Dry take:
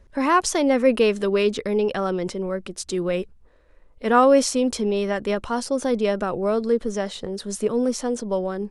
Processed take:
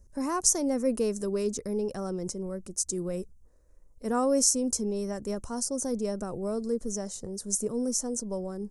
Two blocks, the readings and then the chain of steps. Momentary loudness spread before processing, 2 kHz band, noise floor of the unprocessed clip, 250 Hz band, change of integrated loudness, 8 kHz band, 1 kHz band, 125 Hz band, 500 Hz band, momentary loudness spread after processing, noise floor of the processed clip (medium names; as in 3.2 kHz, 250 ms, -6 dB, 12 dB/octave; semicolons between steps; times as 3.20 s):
11 LU, -18.0 dB, -53 dBFS, -7.0 dB, -7.0 dB, +4.5 dB, -13.5 dB, -5.5 dB, -10.0 dB, 11 LU, -57 dBFS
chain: FFT filter 110 Hz 0 dB, 1.1 kHz -11 dB, 3.4 kHz -21 dB, 6.2 kHz +8 dB; trim -3 dB